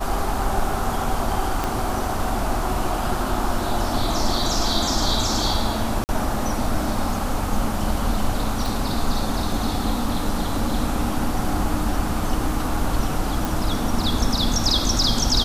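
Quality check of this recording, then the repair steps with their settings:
0:01.64: click
0:06.04–0:06.09: drop-out 49 ms
0:08.66: click
0:13.45: click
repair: click removal
repair the gap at 0:06.04, 49 ms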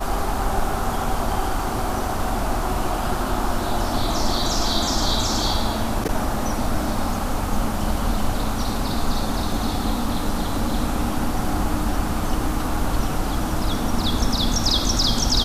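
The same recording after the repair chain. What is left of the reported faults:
0:01.64: click
0:08.66: click

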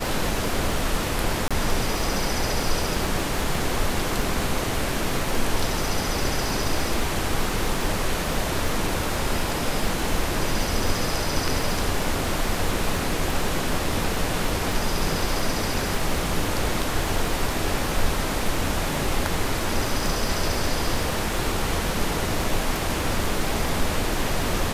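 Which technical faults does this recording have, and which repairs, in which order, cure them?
surface crackle 59 per second −29 dBFS
0:01.48–0:01.51: drop-out 26 ms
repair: click removal
repair the gap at 0:01.48, 26 ms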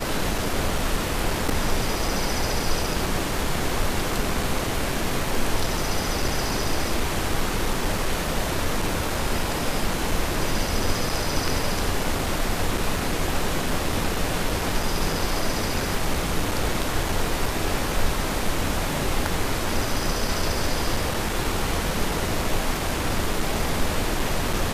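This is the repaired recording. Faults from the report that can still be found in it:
none of them is left

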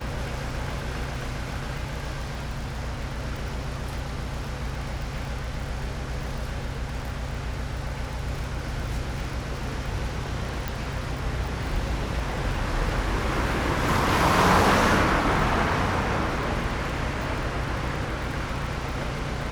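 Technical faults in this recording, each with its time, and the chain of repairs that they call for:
surface crackle 39 per second −32 dBFS
0:10.68: click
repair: click removal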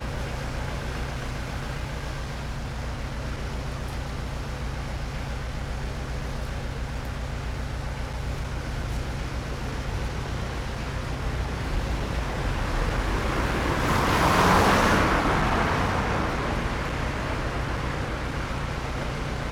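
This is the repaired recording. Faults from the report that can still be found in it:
none of them is left

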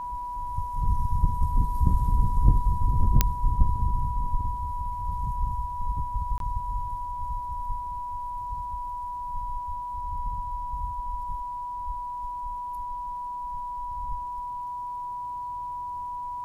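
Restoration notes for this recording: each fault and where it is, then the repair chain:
whistle 980 Hz −31 dBFS
0:03.21: click −3 dBFS
0:06.38–0:06.40: drop-out 22 ms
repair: click removal
notch filter 980 Hz, Q 30
repair the gap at 0:06.38, 22 ms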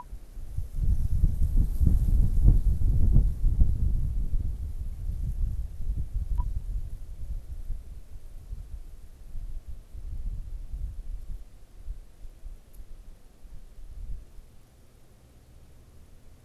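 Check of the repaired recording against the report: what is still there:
none of them is left

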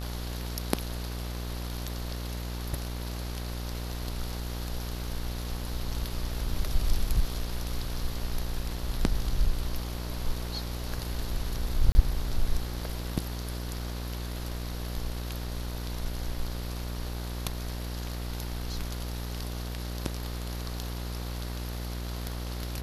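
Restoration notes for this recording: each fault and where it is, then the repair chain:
mains buzz 60 Hz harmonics 38 −35 dBFS
0:11.92–0:11.95: drop-out 30 ms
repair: hum removal 60 Hz, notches 38
repair the gap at 0:11.92, 30 ms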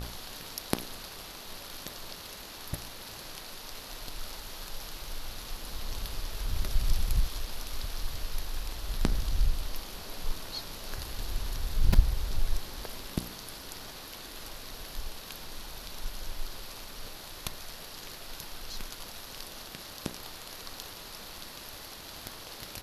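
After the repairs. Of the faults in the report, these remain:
none of them is left

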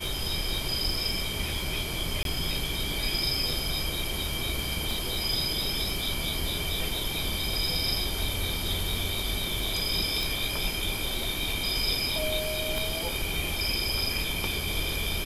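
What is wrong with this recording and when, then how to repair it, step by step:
surface crackle 48 per second −36 dBFS
0:02.23–0:02.25: drop-out 22 ms
0:04.91: click
0:10.23: click
0:12.78: click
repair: click removal
repair the gap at 0:02.23, 22 ms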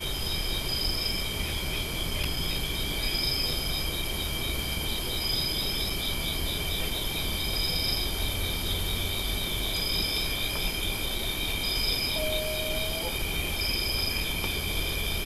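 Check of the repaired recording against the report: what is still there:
0:12.78: click

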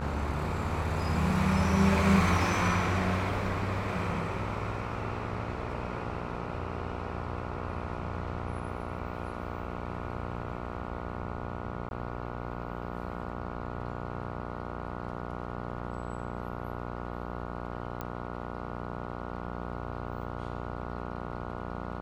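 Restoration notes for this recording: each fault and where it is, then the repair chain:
mains buzz 60 Hz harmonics 24 −38 dBFS
0:11.89–0:11.91: drop-out 21 ms
0:18.01: click −21 dBFS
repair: click removal
hum removal 60 Hz, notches 24
repair the gap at 0:11.89, 21 ms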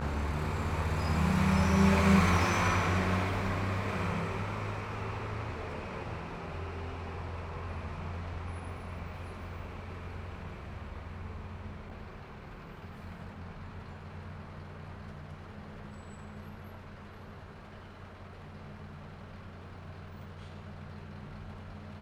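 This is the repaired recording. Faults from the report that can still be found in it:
none of them is left

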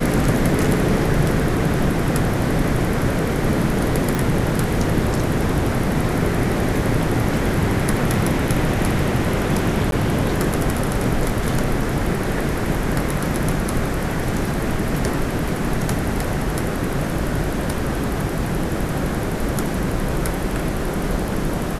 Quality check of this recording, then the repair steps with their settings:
0:04.15: click
0:09.91–0:09.92: drop-out 12 ms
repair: click removal
repair the gap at 0:09.91, 12 ms

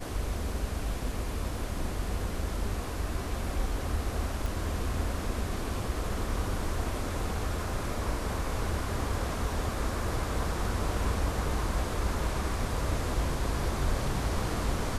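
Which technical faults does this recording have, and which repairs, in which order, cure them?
0:04.46: click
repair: click removal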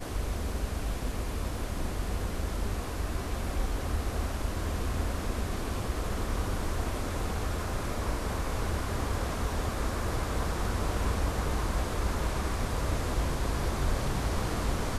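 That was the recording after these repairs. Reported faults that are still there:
none of them is left

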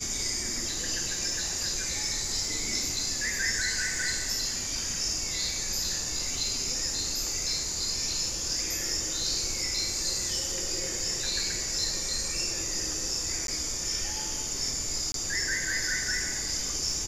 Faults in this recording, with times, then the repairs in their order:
surface crackle 25 per second −38 dBFS
0:13.47–0:13.48: drop-out 12 ms
0:15.12–0:15.14: drop-out 22 ms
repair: click removal
repair the gap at 0:13.47, 12 ms
repair the gap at 0:15.12, 22 ms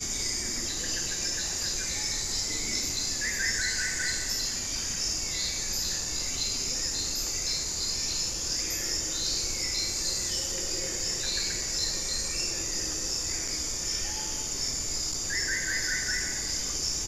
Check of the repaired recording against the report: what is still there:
none of them is left

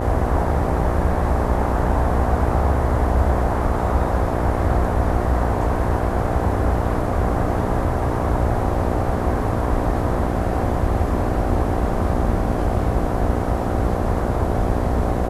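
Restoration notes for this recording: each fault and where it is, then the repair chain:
mains buzz 60 Hz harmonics 13 −25 dBFS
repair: hum removal 60 Hz, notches 13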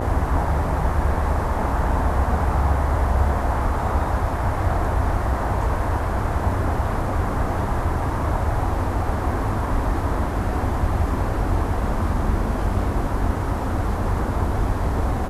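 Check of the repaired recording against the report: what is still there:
none of them is left

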